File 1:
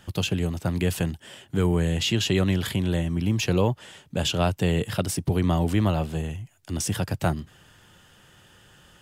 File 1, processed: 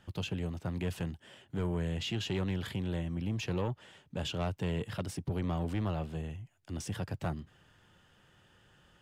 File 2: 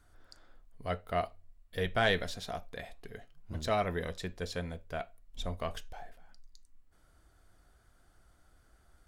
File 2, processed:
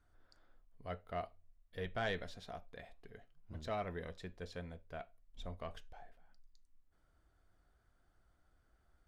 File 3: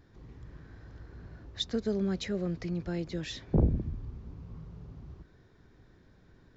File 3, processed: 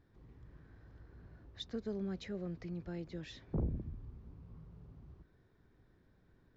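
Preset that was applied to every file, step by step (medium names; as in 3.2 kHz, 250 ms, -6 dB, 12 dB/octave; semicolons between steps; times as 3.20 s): treble shelf 5.8 kHz -11.5 dB; saturation -17.5 dBFS; trim -8.5 dB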